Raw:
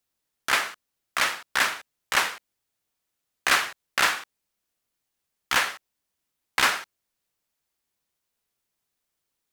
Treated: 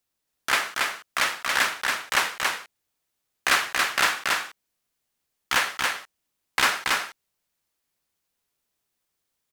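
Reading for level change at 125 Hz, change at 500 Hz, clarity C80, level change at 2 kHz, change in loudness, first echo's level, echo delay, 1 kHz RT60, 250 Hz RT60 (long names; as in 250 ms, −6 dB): +2.0 dB, +2.0 dB, no reverb audible, +2.0 dB, +1.0 dB, −3.0 dB, 279 ms, no reverb audible, no reverb audible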